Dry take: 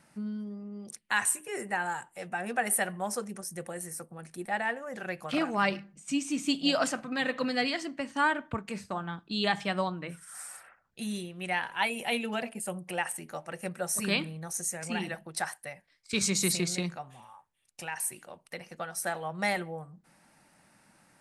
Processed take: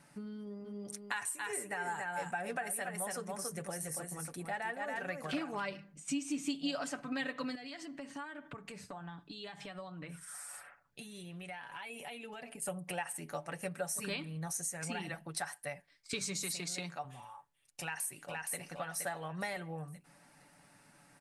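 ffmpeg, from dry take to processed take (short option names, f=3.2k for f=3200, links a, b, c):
-filter_complex "[0:a]asplit=3[a][b][c];[a]afade=t=out:st=0.64:d=0.02[d];[b]aecho=1:1:280:0.562,afade=t=in:st=0.64:d=0.02,afade=t=out:st=5.6:d=0.02[e];[c]afade=t=in:st=5.6:d=0.02[f];[d][e][f]amix=inputs=3:normalize=0,asettb=1/sr,asplit=3[g][h][i];[g]atrim=end=7.554[j];[h]atrim=start=7.55:end=12.62,asetpts=PTS-STARTPTS,afade=t=in:d=0.004:c=qsin,afade=t=out:st=5.066:d=0.004:c=qsin,acompressor=threshold=-42dB:ratio=10:attack=3.2:release=140:knee=1:detection=peak[k];[i]atrim=start=12.616[l];[j][k]acrossfade=d=0.004:c1=hsin:c2=qsin[m];[m][l]acrossfade=d=0.004:c1=qsin:c2=hsin,asettb=1/sr,asplit=3[n][o][p];[n]atrim=end=16.434[q];[o]atrim=start=16.43:end=17.05,asetpts=PTS-STARTPTS,afade=t=in:d=0.004:c=qsin,afade=t=out:st=0.616:d=0.004:c=qsin,highpass=f=340:p=1[r];[p]atrim=start=17.046[s];[q][r]acrossfade=d=0.004:c1=hsin:c2=qsin[t];[t][s]acrossfade=d=0.004:c1=qsin:c2=hsin,asplit=2[u][v];[v]afade=t=in:st=17.81:d=0.01,afade=t=out:st=18.58:d=0.01,aecho=0:1:470|940|1410|1880:0.630957|0.220835|0.0772923|0.0270523[w];[u][w]amix=inputs=2:normalize=0,acompressor=threshold=-35dB:ratio=6,aecho=1:1:7:0.51,volume=-1dB"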